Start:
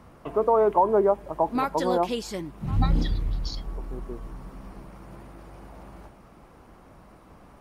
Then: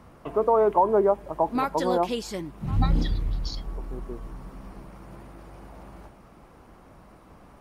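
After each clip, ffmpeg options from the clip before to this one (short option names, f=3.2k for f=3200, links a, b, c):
-af anull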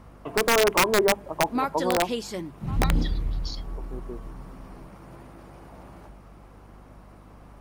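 -af "bandreject=f=50:t=h:w=6,bandreject=f=100:t=h:w=6,bandreject=f=150:t=h:w=6,bandreject=f=200:t=h:w=6,aeval=exprs='(mod(4.47*val(0)+1,2)-1)/4.47':c=same,aeval=exprs='val(0)+0.00355*(sin(2*PI*50*n/s)+sin(2*PI*2*50*n/s)/2+sin(2*PI*3*50*n/s)/3+sin(2*PI*4*50*n/s)/4+sin(2*PI*5*50*n/s)/5)':c=same"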